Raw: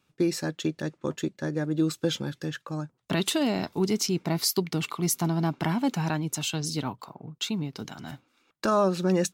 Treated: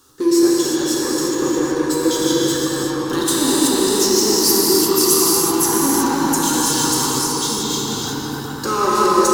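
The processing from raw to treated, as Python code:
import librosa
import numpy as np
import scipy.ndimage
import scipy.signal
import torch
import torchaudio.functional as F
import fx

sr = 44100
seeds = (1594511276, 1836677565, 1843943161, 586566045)

p1 = fx.reverse_delay(x, sr, ms=316, wet_db=-2)
p2 = fx.bass_treble(p1, sr, bass_db=-1, treble_db=8)
p3 = fx.fixed_phaser(p2, sr, hz=640.0, stages=6)
p4 = fx.power_curve(p3, sr, exponent=0.7)
p5 = p4 + fx.echo_filtered(p4, sr, ms=201, feedback_pct=80, hz=3600.0, wet_db=-6.5, dry=0)
p6 = fx.rev_gated(p5, sr, seeds[0], gate_ms=400, shape='flat', drr_db=-5.0)
y = F.gain(torch.from_numpy(p6), -1.0).numpy()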